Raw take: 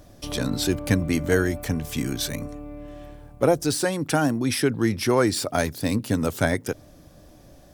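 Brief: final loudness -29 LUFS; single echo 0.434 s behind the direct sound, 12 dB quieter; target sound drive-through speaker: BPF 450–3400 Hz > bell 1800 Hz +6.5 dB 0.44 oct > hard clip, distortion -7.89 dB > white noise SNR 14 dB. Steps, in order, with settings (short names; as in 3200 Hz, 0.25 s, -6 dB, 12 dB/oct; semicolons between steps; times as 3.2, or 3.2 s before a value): BPF 450–3400 Hz; bell 1800 Hz +6.5 dB 0.44 oct; echo 0.434 s -12 dB; hard clip -22.5 dBFS; white noise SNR 14 dB; gain +1 dB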